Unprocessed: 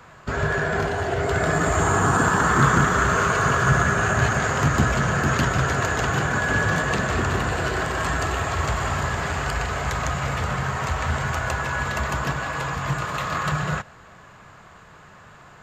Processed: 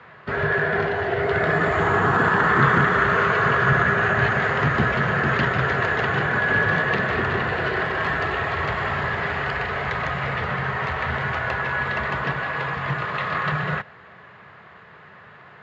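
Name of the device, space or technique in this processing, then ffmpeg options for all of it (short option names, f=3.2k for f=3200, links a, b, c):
guitar cabinet: -af "highpass=110,equalizer=f=280:t=q:w=4:g=-5,equalizer=f=420:t=q:w=4:g=4,equalizer=f=1.9k:t=q:w=4:g=7,lowpass=f=3.9k:w=0.5412,lowpass=f=3.9k:w=1.3066"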